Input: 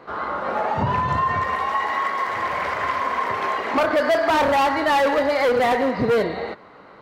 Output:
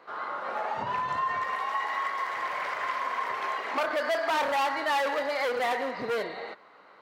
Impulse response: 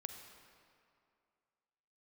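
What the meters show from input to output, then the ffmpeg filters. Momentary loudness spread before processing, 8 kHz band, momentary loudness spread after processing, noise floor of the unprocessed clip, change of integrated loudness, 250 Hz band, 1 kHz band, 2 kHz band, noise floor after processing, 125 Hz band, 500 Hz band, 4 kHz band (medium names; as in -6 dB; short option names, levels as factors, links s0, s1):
7 LU, -5.5 dB, 6 LU, -46 dBFS, -8.5 dB, -15.5 dB, -8.0 dB, -6.5 dB, -55 dBFS, under -20 dB, -10.5 dB, -5.5 dB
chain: -af "highpass=f=800:p=1,volume=0.531"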